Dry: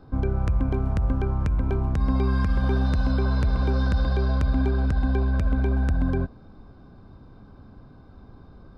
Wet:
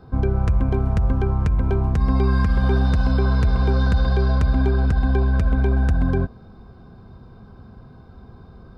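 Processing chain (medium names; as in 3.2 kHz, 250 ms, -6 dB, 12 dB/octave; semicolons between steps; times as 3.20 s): comb of notches 290 Hz; trim +5 dB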